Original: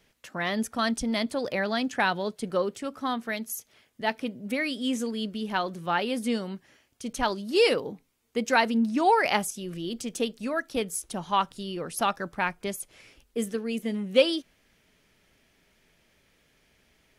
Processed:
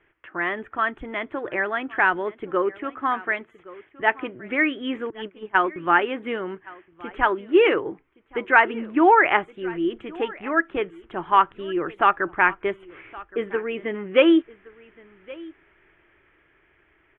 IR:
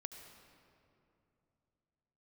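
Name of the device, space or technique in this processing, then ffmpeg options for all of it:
action camera in a waterproof case: -filter_complex "[0:a]asettb=1/sr,asplit=3[link_01][link_02][link_03];[link_01]atrim=end=5.104[link_04];[link_02]atrim=start=5.1:end=5.76,asetpts=PTS-STARTPTS,afade=type=in:duration=0.004:curve=qsin,afade=type=out:start_time=0.656:duration=0.004:curve=qsin,agate=range=-22dB:threshold=-30dB:ratio=16:detection=peak[link_05];[link_03]atrim=start=5.756[link_06];[link_04][link_05]acrossfade=duration=0.004:curve1=hsin:curve2=qsin[link_07];[link_07][link_06]acrossfade=duration=0.004:curve1=qsin:curve2=hsin,lowpass=frequency=1900:width=0.5412,lowpass=frequency=1900:width=1.3066,firequalizer=gain_entry='entry(110,0);entry(230,-11);entry(330,11);entry(500,-2);entry(1100,7);entry(1600,9);entry(3300,13);entry(4800,-22);entry(7300,10);entry(11000,13)':delay=0.05:min_phase=1,aecho=1:1:1119:0.0841,dynaudnorm=framelen=490:gausssize=13:maxgain=13.5dB,volume=-1dB" -ar 48000 -c:a aac -b:a 128k

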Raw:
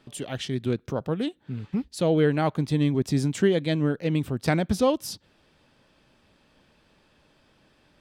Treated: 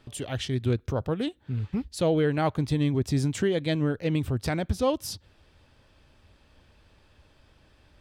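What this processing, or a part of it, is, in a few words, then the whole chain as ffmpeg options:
car stereo with a boomy subwoofer: -af "lowshelf=frequency=120:width_type=q:width=1.5:gain=9.5,alimiter=limit=-15dB:level=0:latency=1:release=251"

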